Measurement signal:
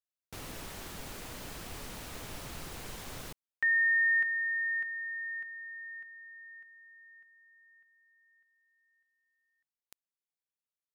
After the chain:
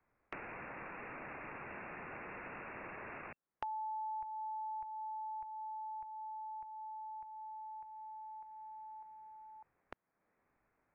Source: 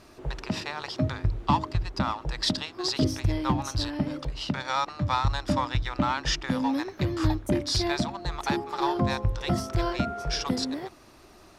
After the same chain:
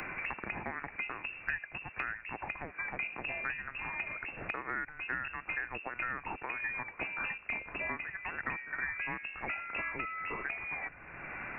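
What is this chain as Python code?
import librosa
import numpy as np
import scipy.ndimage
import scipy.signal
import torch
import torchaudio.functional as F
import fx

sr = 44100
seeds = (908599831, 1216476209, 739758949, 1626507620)

y = fx.tilt_eq(x, sr, slope=3.5)
y = fx.freq_invert(y, sr, carrier_hz=2700)
y = fx.band_squash(y, sr, depth_pct=100)
y = F.gain(torch.from_numpy(y), -7.5).numpy()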